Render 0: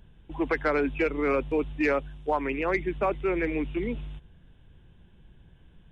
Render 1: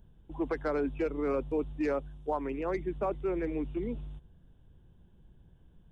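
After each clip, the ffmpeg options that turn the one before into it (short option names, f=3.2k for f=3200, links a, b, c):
-af "equalizer=f=2.3k:w=1:g=-12,volume=-4dB"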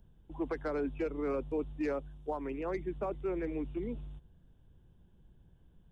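-filter_complex "[0:a]acrossover=split=470|3000[a][b][c];[b]acompressor=threshold=-32dB:ratio=6[d];[a][d][c]amix=inputs=3:normalize=0,volume=-3dB"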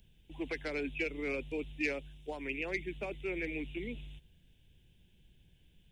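-af "highshelf=f=1.7k:t=q:w=3:g=12,volume=-3dB"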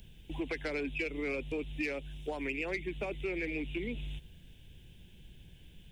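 -filter_complex "[0:a]asplit=2[a][b];[b]asoftclip=type=tanh:threshold=-32.5dB,volume=-3.5dB[c];[a][c]amix=inputs=2:normalize=0,acompressor=threshold=-41dB:ratio=3,volume=5.5dB"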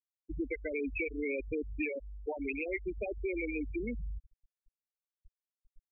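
-filter_complex "[0:a]asplit=2[a][b];[b]volume=34.5dB,asoftclip=hard,volume=-34.5dB,volume=-11dB[c];[a][c]amix=inputs=2:normalize=0,afftfilt=real='re*gte(hypot(re,im),0.0708)':imag='im*gte(hypot(re,im),0.0708)':win_size=1024:overlap=0.75"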